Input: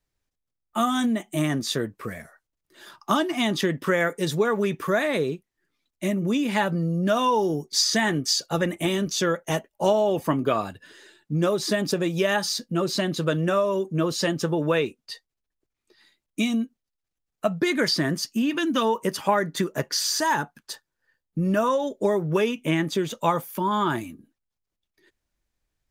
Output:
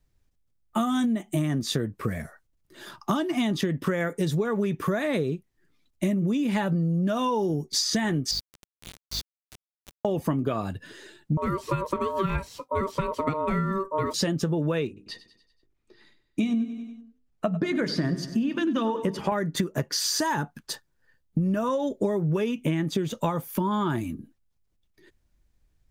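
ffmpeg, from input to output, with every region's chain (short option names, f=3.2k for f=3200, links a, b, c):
-filter_complex "[0:a]asettb=1/sr,asplit=3[a][b][c];[a]atrim=end=8.314[d];[b]atrim=start=8.31:end=10.05,asetpts=PTS-STARTPTS,afade=t=in:d=0.004:c=qsin,afade=t=out:st=1.736:d=0.004:c=qsin,bandpass=f=4.4k:t=q:w=4.4,aeval=exprs='val(0)+0.00355*(sin(2*PI*50*n/s)+sin(2*PI*2*50*n/s)/2+sin(2*PI*3*50*n/s)/3+sin(2*PI*4*50*n/s)/4+sin(2*PI*5*50*n/s)/5)':c=same,aeval=exprs='val(0)*gte(abs(val(0)),0.02)':c=same[e];[c]atrim=start=10.046[f];[d][e]acrossfade=d=0.004:c1=hsin:c2=qsin[g];[g][f]acrossfade=d=0.004:c1=qsin:c2=hsin,asettb=1/sr,asplit=3[h][i][j];[h]atrim=end=11.374[k];[i]atrim=start=11.37:end=14.14,asetpts=PTS-STARTPTS,afade=t=in:d=0.004:c=qsin,afade=t=out:st=2.766:d=0.004:c=qsin,acrossover=split=2700[l][m];[m]acompressor=threshold=-36dB:ratio=4:attack=1:release=60[n];[l][n]amix=inputs=2:normalize=0,equalizer=f=4.6k:t=o:w=1.3:g=-9.5,aeval=exprs='val(0)*sin(2*PI*770*n/s)':c=same[o];[j]atrim=start=14.136[p];[k][o]acrossfade=d=0.004:c1=hsin:c2=qsin[q];[q][p]acrossfade=d=0.004:c1=qsin:c2=hsin,asettb=1/sr,asplit=3[r][s][t];[r]atrim=end=14.874[u];[s]atrim=start=14.87:end=19.32,asetpts=PTS-STARTPTS,afade=t=in:d=0.004:c=qsin,afade=t=out:st=4.446:d=0.004:c=qsin,aemphasis=mode=reproduction:type=50kf,bandreject=f=50:t=h:w=6,bandreject=f=100:t=h:w=6,bandreject=f=150:t=h:w=6,bandreject=f=200:t=h:w=6,bandreject=f=250:t=h:w=6,bandreject=f=300:t=h:w=6,bandreject=f=350:t=h:w=6,bandreject=f=400:t=h:w=6,bandreject=f=450:t=h:w=6,aecho=1:1:96|192|288|384|480:0.168|0.0907|0.049|0.0264|0.0143,atrim=end_sample=196245[v];[t]atrim=start=19.316[w];[u][v]acrossfade=d=0.004:c1=hsin:c2=qsin[x];[x][w]acrossfade=d=0.004:c1=qsin:c2=hsin,lowshelf=f=270:g=12,acompressor=threshold=-25dB:ratio=6,volume=2dB"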